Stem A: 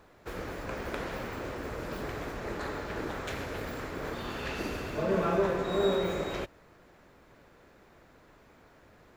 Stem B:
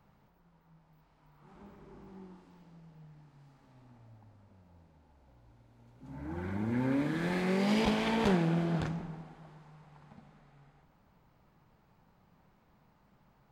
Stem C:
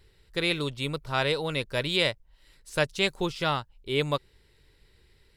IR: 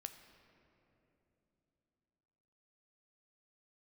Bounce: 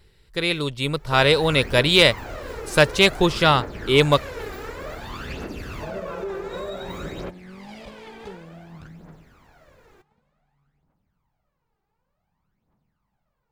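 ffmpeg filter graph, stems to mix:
-filter_complex "[0:a]adelay=850,volume=1.5dB[link_01];[1:a]volume=-12dB[link_02];[2:a]dynaudnorm=framelen=190:gausssize=11:maxgain=11.5dB,volume=3dB[link_03];[link_01][link_02]amix=inputs=2:normalize=0,aphaser=in_gain=1:out_gain=1:delay=2.6:decay=0.63:speed=0.55:type=triangular,alimiter=limit=-22.5dB:level=0:latency=1:release=296,volume=0dB[link_04];[link_03][link_04]amix=inputs=2:normalize=0,asoftclip=type=hard:threshold=-3.5dB"

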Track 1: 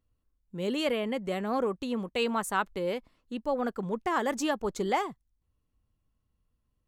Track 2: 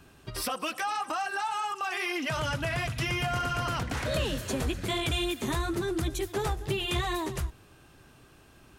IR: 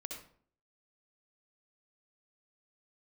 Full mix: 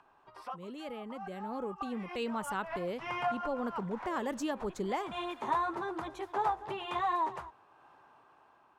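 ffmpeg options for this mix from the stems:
-filter_complex "[0:a]lowshelf=frequency=400:gain=6.5,volume=-18.5dB,asplit=2[link_01][link_02];[1:a]acompressor=mode=upward:threshold=-44dB:ratio=2.5,bandpass=frequency=930:width_type=q:width=3.6:csg=0,volume=-1dB[link_03];[link_02]apad=whole_len=387609[link_04];[link_03][link_04]sidechaincompress=threshold=-57dB:ratio=10:attack=7.3:release=129[link_05];[link_01][link_05]amix=inputs=2:normalize=0,dynaudnorm=framelen=680:gausssize=5:maxgain=10dB"

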